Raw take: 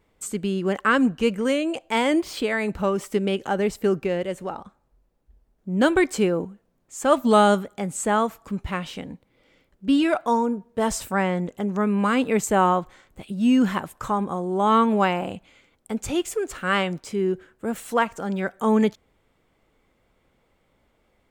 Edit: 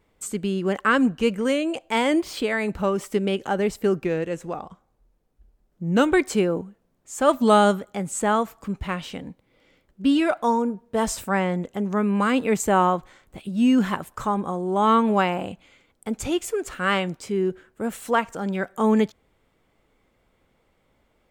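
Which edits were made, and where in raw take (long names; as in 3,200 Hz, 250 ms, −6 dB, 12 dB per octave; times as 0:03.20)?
0:04.05–0:05.95: play speed 92%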